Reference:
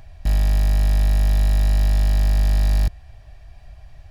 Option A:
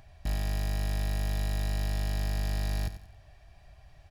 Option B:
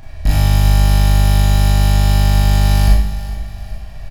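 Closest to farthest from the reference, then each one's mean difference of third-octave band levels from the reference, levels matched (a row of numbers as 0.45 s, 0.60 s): A, B; 1.5 dB, 3.5 dB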